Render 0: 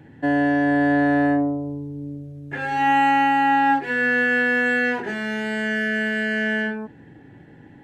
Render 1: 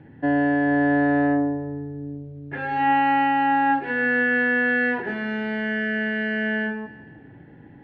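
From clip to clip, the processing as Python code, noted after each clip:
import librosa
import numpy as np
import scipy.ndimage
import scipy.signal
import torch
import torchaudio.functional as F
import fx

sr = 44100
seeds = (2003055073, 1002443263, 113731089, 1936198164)

y = fx.air_absorb(x, sr, metres=300.0)
y = fx.echo_feedback(y, sr, ms=158, feedback_pct=51, wet_db=-16.5)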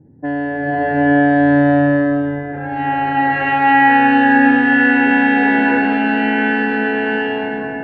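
y = fx.echo_swell(x, sr, ms=109, loudest=8, wet_db=-15.0)
y = fx.env_lowpass(y, sr, base_hz=430.0, full_db=-17.0)
y = fx.rev_bloom(y, sr, seeds[0], attack_ms=760, drr_db=-8.5)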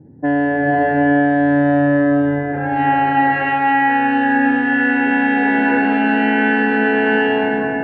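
y = fx.low_shelf(x, sr, hz=90.0, db=-5.5)
y = fx.rider(y, sr, range_db=5, speed_s=0.5)
y = fx.air_absorb(y, sr, metres=140.0)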